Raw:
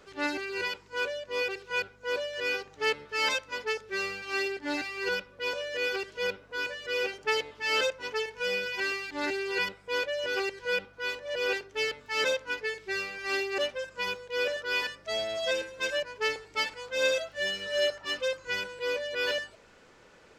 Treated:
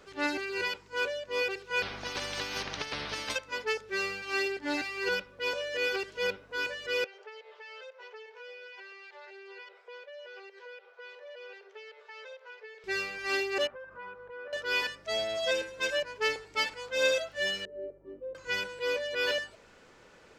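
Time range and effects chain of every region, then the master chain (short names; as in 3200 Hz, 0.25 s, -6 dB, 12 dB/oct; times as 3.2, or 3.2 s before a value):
1.82–3.36 polynomial smoothing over 15 samples + negative-ratio compressor -33 dBFS, ratio -0.5 + spectral compressor 4:1
7.04–12.84 compressor 5:1, threshold -44 dBFS + steep high-pass 390 Hz 96 dB/oct + air absorption 150 m
13.67–14.53 synth low-pass 1300 Hz, resonance Q 2.4 + compressor 3:1, threshold -45 dBFS
17.65–18.35 synth low-pass 380 Hz, resonance Q 4 + resonator 50 Hz, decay 0.79 s, harmonics odd, mix 70%
whole clip: dry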